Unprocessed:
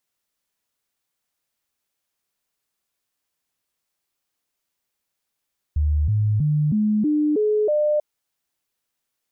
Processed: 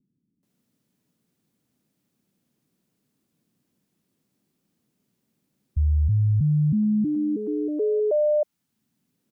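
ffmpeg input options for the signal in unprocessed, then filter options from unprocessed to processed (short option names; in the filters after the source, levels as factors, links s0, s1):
-f lavfi -i "aevalsrc='0.15*clip(min(mod(t,0.32),0.32-mod(t,0.32))/0.005,0,1)*sin(2*PI*75*pow(2,floor(t/0.32)/2)*mod(t,0.32))':d=2.24:s=44100"
-filter_complex "[0:a]acrossover=split=160|260[s0][s1][s2];[s1]acompressor=mode=upward:threshold=0.00355:ratio=2.5[s3];[s0][s3][s2]amix=inputs=3:normalize=0,acrossover=split=330[s4][s5];[s5]adelay=430[s6];[s4][s6]amix=inputs=2:normalize=0"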